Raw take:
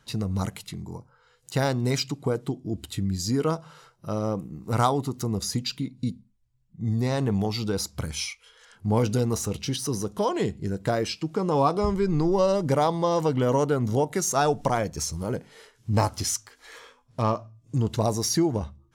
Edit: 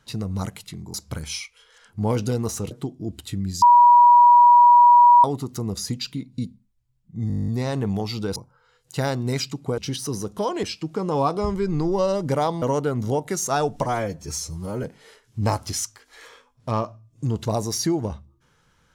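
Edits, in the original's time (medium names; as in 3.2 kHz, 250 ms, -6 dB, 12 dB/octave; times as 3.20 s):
0.94–2.36 s: swap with 7.81–9.58 s
3.27–4.89 s: bleep 965 Hz -8.5 dBFS
6.93 s: stutter 0.02 s, 11 plays
10.43–11.03 s: delete
13.02–13.47 s: delete
14.67–15.35 s: stretch 1.5×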